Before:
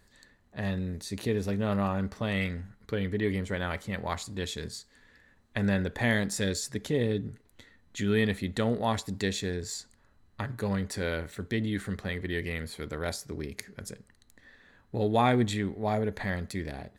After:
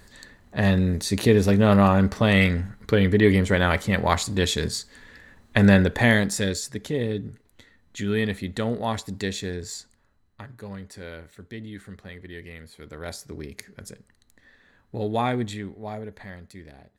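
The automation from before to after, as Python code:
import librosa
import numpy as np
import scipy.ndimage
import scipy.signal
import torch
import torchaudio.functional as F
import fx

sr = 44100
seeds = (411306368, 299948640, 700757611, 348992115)

y = fx.gain(x, sr, db=fx.line((5.74, 11.5), (6.74, 1.5), (9.76, 1.5), (10.5, -7.5), (12.71, -7.5), (13.21, 0.0), (15.18, 0.0), (16.35, -9.0)))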